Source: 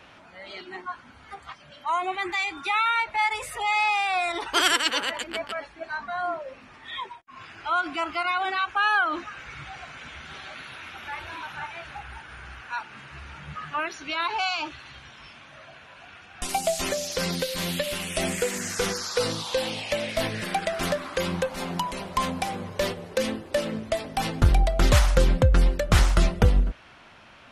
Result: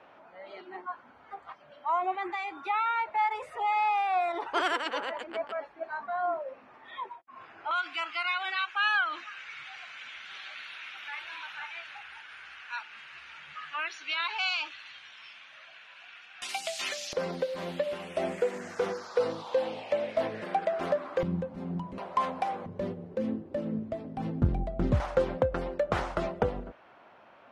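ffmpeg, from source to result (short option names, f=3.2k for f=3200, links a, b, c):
-af "asetnsamples=n=441:p=0,asendcmd='7.71 bandpass f 2700;17.13 bandpass f 590;21.23 bandpass f 170;21.98 bandpass f 780;22.66 bandpass f 210;25 bandpass f 630',bandpass=f=660:t=q:w=0.99:csg=0"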